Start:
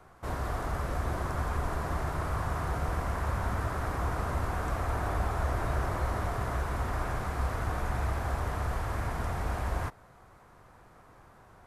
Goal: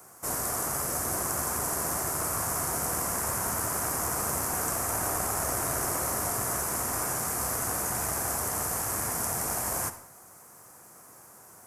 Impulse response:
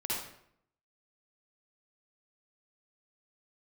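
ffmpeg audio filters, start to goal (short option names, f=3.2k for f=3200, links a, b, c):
-filter_complex "[0:a]highpass=150,aeval=exprs='0.0841*(cos(1*acos(clip(val(0)/0.0841,-1,1)))-cos(1*PI/2))+0.0237*(cos(2*acos(clip(val(0)/0.0841,-1,1)))-cos(2*PI/2))':c=same,aexciter=amount=10.9:drive=5.8:freq=5.5k,asplit=2[a][b];[1:a]atrim=start_sample=2205[c];[b][c]afir=irnorm=-1:irlink=0,volume=-14.5dB[d];[a][d]amix=inputs=2:normalize=0"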